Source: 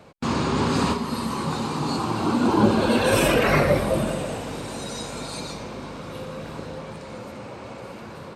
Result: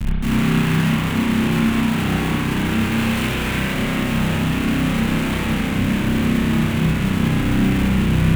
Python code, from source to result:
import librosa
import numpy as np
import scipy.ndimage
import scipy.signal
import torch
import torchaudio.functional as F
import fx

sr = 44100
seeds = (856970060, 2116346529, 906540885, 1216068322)

y = fx.bin_compress(x, sr, power=0.6)
y = scipy.signal.sosfilt(scipy.signal.butter(2, 130.0, 'highpass', fs=sr, output='sos'), y)
y = fx.schmitt(y, sr, flips_db=-26.5)
y = fx.curve_eq(y, sr, hz=(210.0, 520.0, 2700.0, 5200.0, 7400.0), db=(0, -17, -2, -10, -5))
y = fx.rev_spring(y, sr, rt60_s=1.3, pass_ms=(31,), chirp_ms=45, drr_db=-5.0)